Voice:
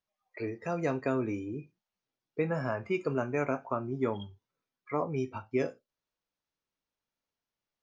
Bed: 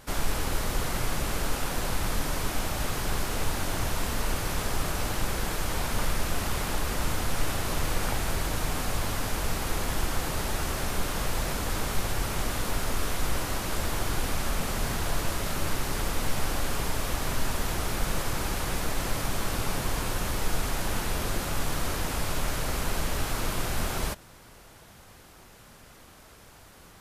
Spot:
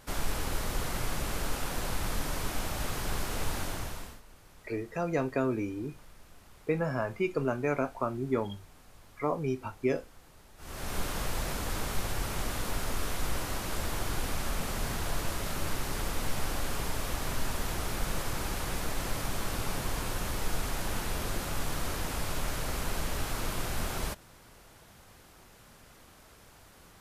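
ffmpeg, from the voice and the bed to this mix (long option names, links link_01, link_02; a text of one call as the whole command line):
ffmpeg -i stem1.wav -i stem2.wav -filter_complex "[0:a]adelay=4300,volume=1dB[link_01];[1:a]volume=18.5dB,afade=type=out:start_time=3.58:duration=0.63:silence=0.0749894,afade=type=in:start_time=10.57:duration=0.41:silence=0.0749894[link_02];[link_01][link_02]amix=inputs=2:normalize=0" out.wav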